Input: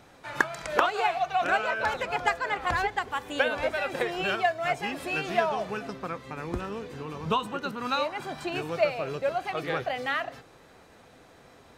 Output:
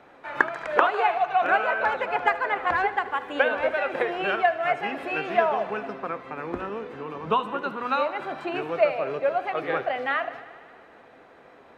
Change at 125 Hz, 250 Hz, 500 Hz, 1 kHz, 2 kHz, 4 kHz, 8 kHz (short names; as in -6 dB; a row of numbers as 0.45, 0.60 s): -5.0 dB, +1.0 dB, +4.0 dB, +4.0 dB, +3.0 dB, -3.0 dB, under -10 dB